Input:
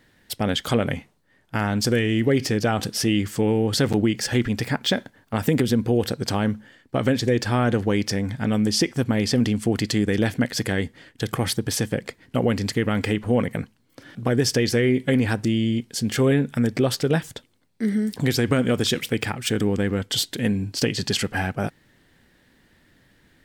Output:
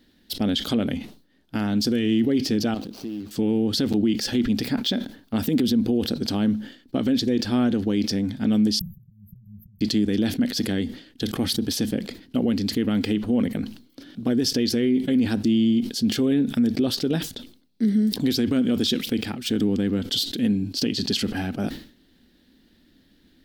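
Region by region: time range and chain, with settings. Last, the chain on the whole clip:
0:02.74–0:03.31: running median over 25 samples + bass and treble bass −7 dB, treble +1 dB + downward compressor, threshold −30 dBFS
0:08.79–0:09.81: volume swells 655 ms + linear-phase brick-wall band-stop 190–12,000 Hz
whole clip: octave-band graphic EQ 125/250/500/1,000/2,000/4,000/8,000 Hz −11/+8/−5/−8/−9/+6/−9 dB; brickwall limiter −14.5 dBFS; level that may fall only so fast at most 120 dB per second; level +1 dB

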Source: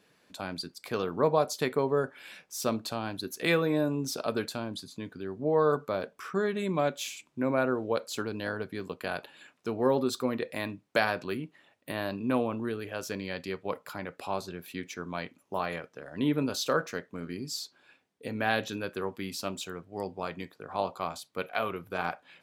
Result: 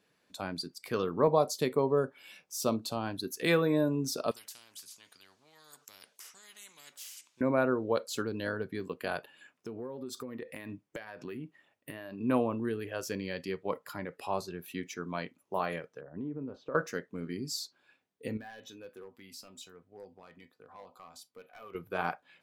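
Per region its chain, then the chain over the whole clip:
0:01.27–0:02.97: high-pass filter 54 Hz + parametric band 1,700 Hz −5.5 dB 0.55 octaves
0:04.31–0:07.41: resonant band-pass 5,600 Hz, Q 0.86 + every bin compressed towards the loudest bin 4 to 1
0:09.17–0:12.21: parametric band 4,000 Hz −6 dB 0.2 octaves + downward compressor 16 to 1, threshold −35 dBFS
0:16.01–0:16.75: low-pass filter 1,100 Hz + downward compressor 5 to 1, threshold −35 dBFS
0:18.37–0:21.75: downward compressor 2 to 1, threshold −39 dBFS + tuned comb filter 250 Hz, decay 0.16 s + hard clipping −37.5 dBFS
whole clip: noise reduction from a noise print of the clip's start 7 dB; dynamic equaliser 2,500 Hz, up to −3 dB, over −46 dBFS, Q 1.2

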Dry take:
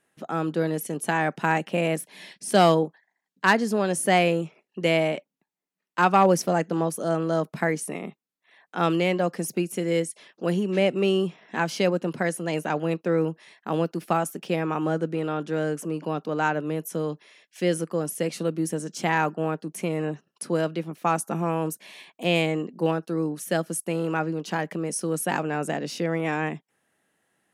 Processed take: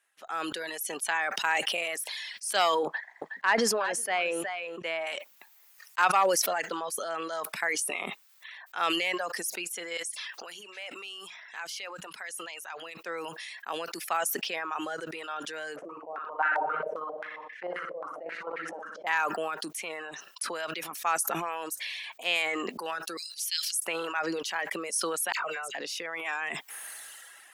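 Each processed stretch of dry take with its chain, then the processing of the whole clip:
0:02.85–0:05.07: low-pass filter 1,300 Hz 6 dB per octave + single-tap delay 366 ms −12 dB
0:09.97–0:12.97: tilt shelving filter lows −5 dB, about 670 Hz + mains-hum notches 60/120/180/240/300 Hz + downward compressor 2 to 1, threshold −42 dBFS
0:15.76–0:19.07: square-wave tremolo 4.8 Hz, depth 60%, duty 15% + flutter between parallel walls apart 10.6 metres, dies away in 1 s + low-pass on a step sequencer 7.5 Hz 600–1,800 Hz
0:23.17–0:23.75: inverse Chebyshev high-pass filter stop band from 930 Hz, stop band 50 dB + parametric band 4,700 Hz +14 dB 0.69 octaves
0:25.32–0:25.75: parametric band 280 Hz −12.5 dB 0.5 octaves + notch comb filter 840 Hz + all-pass dispersion lows, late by 67 ms, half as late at 1,900 Hz
whole clip: high-pass filter 1,100 Hz 12 dB per octave; reverb reduction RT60 1 s; level that may fall only so fast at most 21 dB per second

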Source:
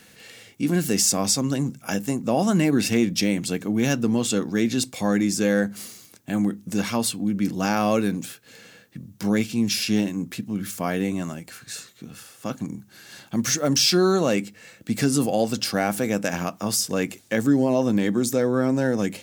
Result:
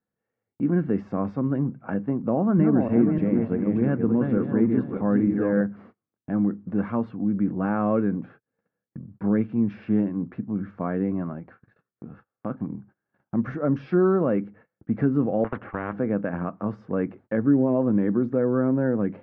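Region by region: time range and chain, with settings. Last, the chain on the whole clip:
0:02.29–0:05.61: feedback delay that plays each chunk backwards 298 ms, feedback 45%, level −4.5 dB + low-pass filter 6,100 Hz + high-shelf EQ 3,900 Hz −9 dB
0:15.44–0:15.93: low-pass filter 2,200 Hz 24 dB per octave + noise gate −29 dBFS, range −18 dB + every bin compressed towards the loudest bin 4 to 1
whole clip: low-pass filter 1,400 Hz 24 dB per octave; noise gate −47 dBFS, range −31 dB; dynamic equaliser 780 Hz, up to −6 dB, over −38 dBFS, Q 2

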